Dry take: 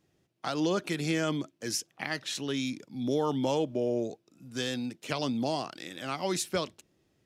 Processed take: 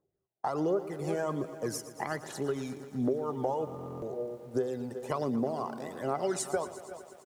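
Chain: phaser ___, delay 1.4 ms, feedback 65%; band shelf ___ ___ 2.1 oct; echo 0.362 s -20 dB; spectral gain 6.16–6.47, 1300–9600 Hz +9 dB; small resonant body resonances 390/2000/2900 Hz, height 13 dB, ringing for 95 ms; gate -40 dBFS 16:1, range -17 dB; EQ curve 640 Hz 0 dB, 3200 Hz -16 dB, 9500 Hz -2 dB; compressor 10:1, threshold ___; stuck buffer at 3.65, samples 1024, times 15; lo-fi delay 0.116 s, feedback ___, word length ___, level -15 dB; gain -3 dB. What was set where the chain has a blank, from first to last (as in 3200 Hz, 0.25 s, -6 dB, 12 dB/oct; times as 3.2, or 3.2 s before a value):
1.3 Hz, 860 Hz, +11 dB, -24 dBFS, 80%, 9-bit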